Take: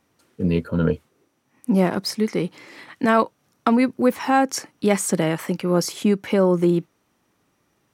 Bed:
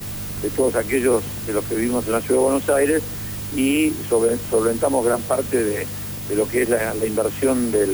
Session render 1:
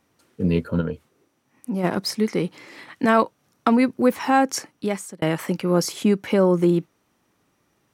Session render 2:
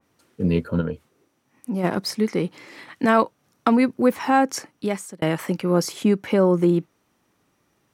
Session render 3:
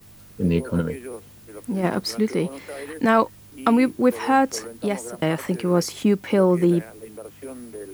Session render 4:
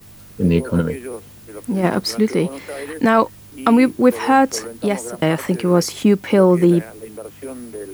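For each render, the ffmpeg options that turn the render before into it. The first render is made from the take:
ffmpeg -i in.wav -filter_complex "[0:a]asplit=3[link_01][link_02][link_03];[link_01]afade=type=out:start_time=0.8:duration=0.02[link_04];[link_02]acompressor=threshold=-36dB:ratio=1.5:attack=3.2:release=140:knee=1:detection=peak,afade=type=in:start_time=0.8:duration=0.02,afade=type=out:start_time=1.83:duration=0.02[link_05];[link_03]afade=type=in:start_time=1.83:duration=0.02[link_06];[link_04][link_05][link_06]amix=inputs=3:normalize=0,asplit=2[link_07][link_08];[link_07]atrim=end=5.22,asetpts=PTS-STARTPTS,afade=type=out:start_time=4.56:duration=0.66[link_09];[link_08]atrim=start=5.22,asetpts=PTS-STARTPTS,afade=type=in:duration=0.004:curve=hsin[link_10];[link_09][link_10]concat=n=2:v=0:a=1" out.wav
ffmpeg -i in.wav -af "adynamicequalizer=threshold=0.0126:dfrequency=2500:dqfactor=0.7:tfrequency=2500:tqfactor=0.7:attack=5:release=100:ratio=0.375:range=1.5:mode=cutabove:tftype=highshelf" out.wav
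ffmpeg -i in.wav -i bed.wav -filter_complex "[1:a]volume=-18dB[link_01];[0:a][link_01]amix=inputs=2:normalize=0" out.wav
ffmpeg -i in.wav -af "volume=5dB,alimiter=limit=-2dB:level=0:latency=1" out.wav

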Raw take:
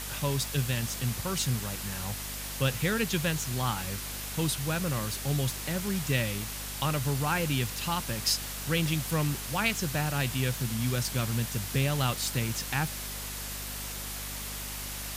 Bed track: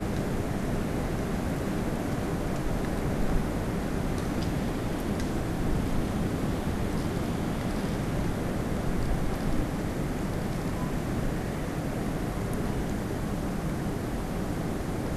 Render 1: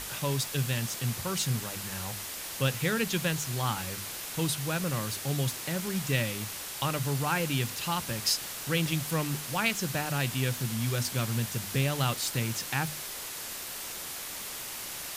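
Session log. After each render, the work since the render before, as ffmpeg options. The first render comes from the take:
ffmpeg -i in.wav -af "bandreject=frequency=50:width_type=h:width=6,bandreject=frequency=100:width_type=h:width=6,bandreject=frequency=150:width_type=h:width=6,bandreject=frequency=200:width_type=h:width=6,bandreject=frequency=250:width_type=h:width=6" out.wav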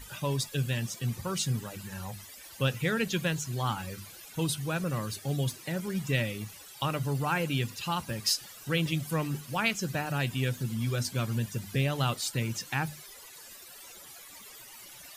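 ffmpeg -i in.wav -af "afftdn=noise_reduction=16:noise_floor=-39" out.wav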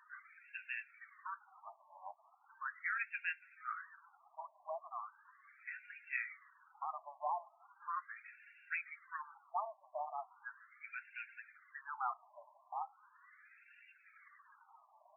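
ffmpeg -i in.wav -af "flanger=delay=0.2:depth=9.5:regen=-47:speed=0.43:shape=sinusoidal,afftfilt=real='re*between(b*sr/1024,810*pow(2000/810,0.5+0.5*sin(2*PI*0.38*pts/sr))/1.41,810*pow(2000/810,0.5+0.5*sin(2*PI*0.38*pts/sr))*1.41)':imag='im*between(b*sr/1024,810*pow(2000/810,0.5+0.5*sin(2*PI*0.38*pts/sr))/1.41,810*pow(2000/810,0.5+0.5*sin(2*PI*0.38*pts/sr))*1.41)':win_size=1024:overlap=0.75" out.wav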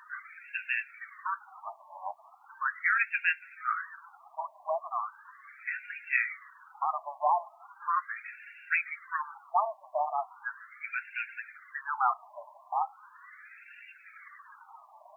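ffmpeg -i in.wav -af "volume=12dB" out.wav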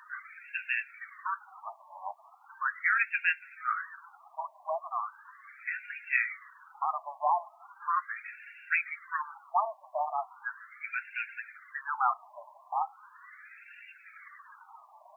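ffmpeg -i in.wav -af "highpass=590" out.wav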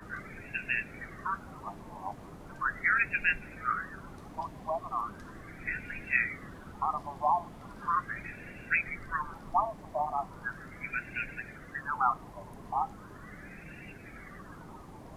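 ffmpeg -i in.wav -i bed.wav -filter_complex "[1:a]volume=-18.5dB[link_01];[0:a][link_01]amix=inputs=2:normalize=0" out.wav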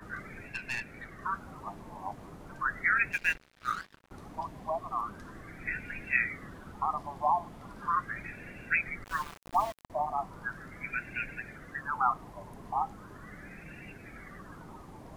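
ffmpeg -i in.wav -filter_complex "[0:a]asettb=1/sr,asplit=3[link_01][link_02][link_03];[link_01]atrim=end=0.484[link_04];[link_02]atrim=start=0.48:end=1.22,asetpts=PTS-STARTPTS,afade=type=in:duration=0.004:curve=qsin,afade=type=out:start_time=0.736:duration=0.004:curve=qsin,aeval=exprs='(tanh(25.1*val(0)+0.5)-tanh(0.5))/25.1':channel_layout=same[link_05];[link_03]atrim=start=1.216[link_06];[link_04][link_05]acrossfade=duration=0.004:curve1=hsin:curve2=qsin[link_07];[link_07][link_06]acrossfade=duration=0.004:curve1=qsin:curve2=hsin,asettb=1/sr,asplit=3[link_08][link_09][link_10];[link_08]atrim=end=3.124[link_11];[link_09]atrim=start=3.12:end=4.11,asetpts=PTS-STARTPTS,afade=type=in:duration=0.004:curve=qsin,afade=type=out:start_time=0.986:duration=0.004:curve=qsin,aeval=exprs='sgn(val(0))*max(abs(val(0))-0.00944,0)':channel_layout=same[link_12];[link_10]atrim=start=4.106[link_13];[link_11][link_12]acrossfade=duration=0.004:curve1=hsin:curve2=qsin[link_14];[link_14][link_13]acrossfade=duration=0.004:curve1=qsin:curve2=hsin,asettb=1/sr,asplit=3[link_15][link_16][link_17];[link_15]atrim=end=9.044[link_18];[link_16]atrim=start=9.04:end=9.9,asetpts=PTS-STARTPTS,afade=type=in:duration=0.004:curve=qsin,afade=type=out:start_time=0.856:duration=0.004:curve=qsin,aeval=exprs='val(0)*gte(abs(val(0)),0.0112)':channel_layout=same[link_19];[link_17]atrim=start=9.896[link_20];[link_18][link_19]acrossfade=duration=0.004:curve1=hsin:curve2=qsin[link_21];[link_21][link_20]acrossfade=duration=0.004:curve1=qsin:curve2=hsin" out.wav

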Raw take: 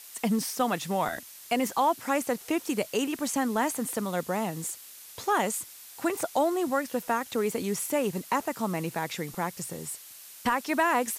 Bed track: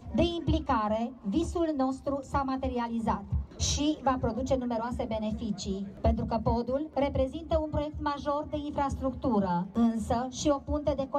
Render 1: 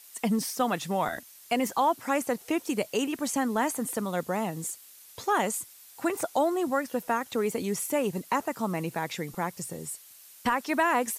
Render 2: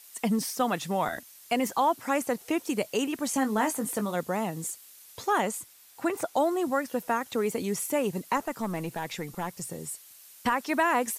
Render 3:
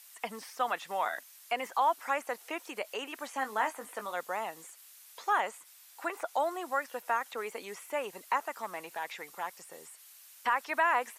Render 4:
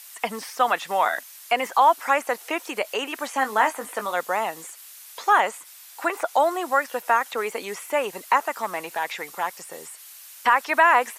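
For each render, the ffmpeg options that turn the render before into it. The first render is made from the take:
ffmpeg -i in.wav -af "afftdn=noise_reduction=6:noise_floor=-48" out.wav
ffmpeg -i in.wav -filter_complex "[0:a]asettb=1/sr,asplit=3[link_01][link_02][link_03];[link_01]atrim=end=3.294[link_04];[link_02]atrim=start=3.29:end=4.15,asetpts=PTS-STARTPTS,afade=type=in:duration=0.004:curve=qsin,afade=type=out:start_time=0.856:duration=0.004:curve=qsin,asplit=2[link_05][link_06];[link_06]adelay=19,volume=-7.5dB[link_07];[link_05][link_07]amix=inputs=2:normalize=0,atrim=end_sample=37926[link_08];[link_03]atrim=start=4.146[link_09];[link_04][link_08]acrossfade=duration=0.004:curve1=hsin:curve2=qsin[link_10];[link_10][link_09]acrossfade=duration=0.004:curve1=qsin:curve2=hsin,asettb=1/sr,asplit=3[link_11][link_12][link_13];[link_11]atrim=end=5.404[link_14];[link_12]atrim=start=5.4:end=6.37,asetpts=PTS-STARTPTS,afade=type=in:duration=0.004:curve=qsin,afade=type=out:start_time=0.966:duration=0.004:curve=qsin,equalizer=frequency=11000:width_type=o:width=2.2:gain=-4[link_15];[link_13]atrim=start=6.366[link_16];[link_14][link_15]acrossfade=duration=0.004:curve1=hsin:curve2=qsin[link_17];[link_17][link_16]acrossfade=duration=0.004:curve1=qsin:curve2=hsin,asettb=1/sr,asplit=3[link_18][link_19][link_20];[link_18]atrim=end=8.374[link_21];[link_19]atrim=start=8.37:end=9.62,asetpts=PTS-STARTPTS,afade=type=in:duration=0.004:curve=qsin,afade=type=out:start_time=1.246:duration=0.004:curve=qsin,aeval=exprs='(tanh(10*val(0)+0.3)-tanh(0.3))/10':channel_layout=same[link_22];[link_20]atrim=start=9.616[link_23];[link_21][link_22]acrossfade=duration=0.004:curve1=hsin:curve2=qsin[link_24];[link_24][link_23]acrossfade=duration=0.004:curve1=qsin:curve2=hsin" out.wav
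ffmpeg -i in.wav -filter_complex "[0:a]acrossover=split=2900[link_01][link_02];[link_02]acompressor=threshold=-50dB:ratio=4:attack=1:release=60[link_03];[link_01][link_03]amix=inputs=2:normalize=0,highpass=780" out.wav
ffmpeg -i in.wav -af "volume=10.5dB" out.wav

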